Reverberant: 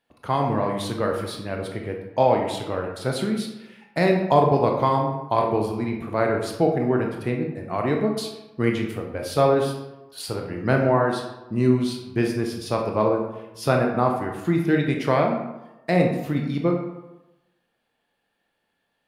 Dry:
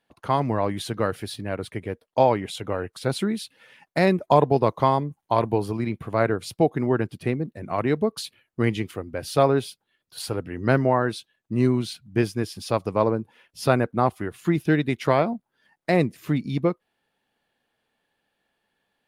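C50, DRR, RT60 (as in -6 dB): 5.0 dB, 1.5 dB, 1.0 s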